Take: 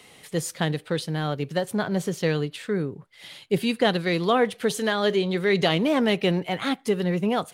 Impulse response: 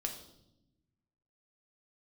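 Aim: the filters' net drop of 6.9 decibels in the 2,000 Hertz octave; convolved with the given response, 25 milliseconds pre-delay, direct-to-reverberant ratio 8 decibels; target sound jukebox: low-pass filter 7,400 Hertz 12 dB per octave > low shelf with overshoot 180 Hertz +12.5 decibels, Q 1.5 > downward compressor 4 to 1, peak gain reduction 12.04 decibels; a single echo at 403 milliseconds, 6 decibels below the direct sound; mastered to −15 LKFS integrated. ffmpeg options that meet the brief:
-filter_complex "[0:a]equalizer=frequency=2000:width_type=o:gain=-8.5,aecho=1:1:403:0.501,asplit=2[link_01][link_02];[1:a]atrim=start_sample=2205,adelay=25[link_03];[link_02][link_03]afir=irnorm=-1:irlink=0,volume=-8.5dB[link_04];[link_01][link_04]amix=inputs=2:normalize=0,lowpass=7400,lowshelf=frequency=180:width_type=q:width=1.5:gain=12.5,acompressor=threshold=-26dB:ratio=4,volume=14dB"

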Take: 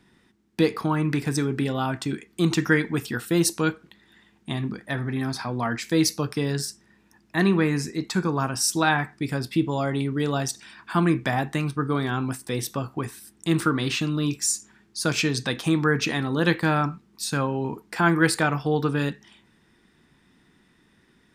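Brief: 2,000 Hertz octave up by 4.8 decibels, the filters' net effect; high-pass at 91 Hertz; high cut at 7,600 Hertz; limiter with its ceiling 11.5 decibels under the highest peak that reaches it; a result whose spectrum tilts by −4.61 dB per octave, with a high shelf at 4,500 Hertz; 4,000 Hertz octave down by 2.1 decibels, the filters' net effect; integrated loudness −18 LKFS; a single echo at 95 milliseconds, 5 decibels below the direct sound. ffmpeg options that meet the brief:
ffmpeg -i in.wav -af "highpass=91,lowpass=7600,equalizer=frequency=2000:width_type=o:gain=7,equalizer=frequency=4000:width_type=o:gain=-8,highshelf=frequency=4500:gain=6,alimiter=limit=-13.5dB:level=0:latency=1,aecho=1:1:95:0.562,volume=7dB" out.wav

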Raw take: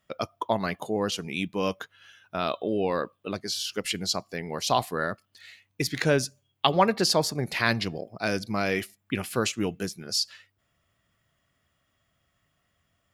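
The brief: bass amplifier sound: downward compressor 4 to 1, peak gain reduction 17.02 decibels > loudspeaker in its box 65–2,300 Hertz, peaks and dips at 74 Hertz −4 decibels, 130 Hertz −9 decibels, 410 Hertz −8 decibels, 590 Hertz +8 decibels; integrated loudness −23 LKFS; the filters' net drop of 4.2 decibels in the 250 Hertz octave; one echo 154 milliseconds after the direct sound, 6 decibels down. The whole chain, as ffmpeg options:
ffmpeg -i in.wav -af "equalizer=frequency=250:width_type=o:gain=-4,aecho=1:1:154:0.501,acompressor=threshold=-35dB:ratio=4,highpass=frequency=65:width=0.5412,highpass=frequency=65:width=1.3066,equalizer=frequency=74:width_type=q:width=4:gain=-4,equalizer=frequency=130:width_type=q:width=4:gain=-9,equalizer=frequency=410:width_type=q:width=4:gain=-8,equalizer=frequency=590:width_type=q:width=4:gain=8,lowpass=frequency=2300:width=0.5412,lowpass=frequency=2300:width=1.3066,volume=15.5dB" out.wav

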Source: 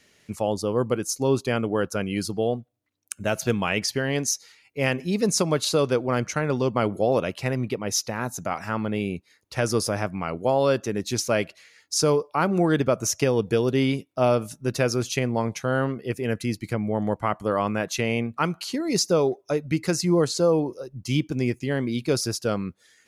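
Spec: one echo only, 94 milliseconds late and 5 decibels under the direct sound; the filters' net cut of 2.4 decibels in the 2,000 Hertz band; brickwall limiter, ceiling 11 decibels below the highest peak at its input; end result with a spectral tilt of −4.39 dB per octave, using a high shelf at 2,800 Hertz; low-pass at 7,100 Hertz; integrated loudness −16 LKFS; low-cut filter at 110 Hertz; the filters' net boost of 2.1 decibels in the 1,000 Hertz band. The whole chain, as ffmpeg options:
ffmpeg -i in.wav -af "highpass=110,lowpass=7100,equalizer=frequency=1000:width_type=o:gain=4,equalizer=frequency=2000:width_type=o:gain=-6.5,highshelf=frequency=2800:gain=4,alimiter=limit=-18dB:level=0:latency=1,aecho=1:1:94:0.562,volume=12dB" out.wav

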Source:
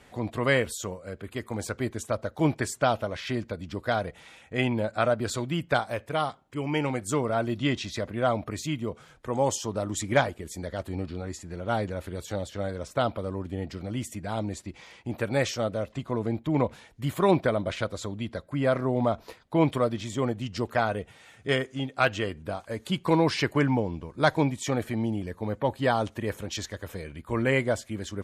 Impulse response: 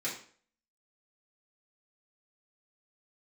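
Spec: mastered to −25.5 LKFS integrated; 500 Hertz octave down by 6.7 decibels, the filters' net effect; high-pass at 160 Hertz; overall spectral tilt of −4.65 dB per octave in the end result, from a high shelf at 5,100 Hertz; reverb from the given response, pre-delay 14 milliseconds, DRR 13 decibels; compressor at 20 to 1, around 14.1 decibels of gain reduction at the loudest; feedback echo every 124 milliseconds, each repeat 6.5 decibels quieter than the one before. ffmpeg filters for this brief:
-filter_complex "[0:a]highpass=160,equalizer=frequency=500:width_type=o:gain=-8.5,highshelf=frequency=5100:gain=-6.5,acompressor=threshold=-34dB:ratio=20,aecho=1:1:124|248|372|496|620|744:0.473|0.222|0.105|0.0491|0.0231|0.0109,asplit=2[link_01][link_02];[1:a]atrim=start_sample=2205,adelay=14[link_03];[link_02][link_03]afir=irnorm=-1:irlink=0,volume=-17.5dB[link_04];[link_01][link_04]amix=inputs=2:normalize=0,volume=14dB"

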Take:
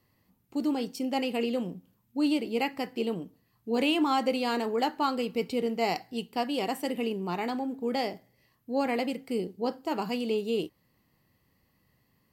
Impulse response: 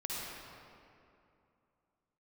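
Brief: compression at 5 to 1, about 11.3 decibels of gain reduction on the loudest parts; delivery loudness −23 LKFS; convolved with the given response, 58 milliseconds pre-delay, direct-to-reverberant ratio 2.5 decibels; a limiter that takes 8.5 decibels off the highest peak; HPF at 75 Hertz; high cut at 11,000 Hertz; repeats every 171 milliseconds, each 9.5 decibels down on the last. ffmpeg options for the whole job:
-filter_complex "[0:a]highpass=75,lowpass=11000,acompressor=threshold=-35dB:ratio=5,alimiter=level_in=9dB:limit=-24dB:level=0:latency=1,volume=-9dB,aecho=1:1:171|342|513|684:0.335|0.111|0.0365|0.012,asplit=2[link_01][link_02];[1:a]atrim=start_sample=2205,adelay=58[link_03];[link_02][link_03]afir=irnorm=-1:irlink=0,volume=-5.5dB[link_04];[link_01][link_04]amix=inputs=2:normalize=0,volume=17dB"

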